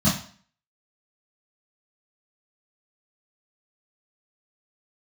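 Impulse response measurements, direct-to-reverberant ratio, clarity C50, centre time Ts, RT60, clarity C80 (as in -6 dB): -10.5 dB, 5.5 dB, 36 ms, 0.50 s, 11.5 dB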